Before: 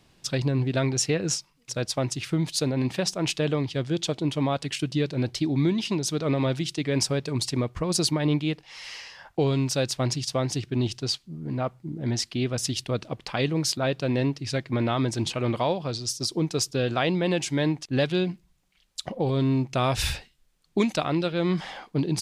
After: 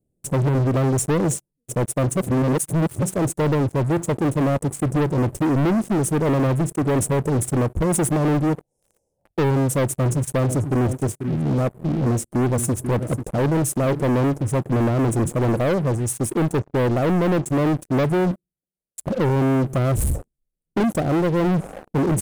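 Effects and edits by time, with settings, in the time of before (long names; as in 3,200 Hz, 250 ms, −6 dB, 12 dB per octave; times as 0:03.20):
0:02.17–0:03.02: reverse
0:09.94–0:14.04: single-tap delay 490 ms −15.5 dB
0:16.53–0:17.46: low-pass filter 2,400 Hz 24 dB per octave
0:18.31–0:19.00: high-pass filter 340 Hz 6 dB per octave
whole clip: inverse Chebyshev band-stop filter 1,200–4,600 Hz, stop band 50 dB; high-shelf EQ 6,500 Hz −3 dB; leveller curve on the samples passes 5; level −2.5 dB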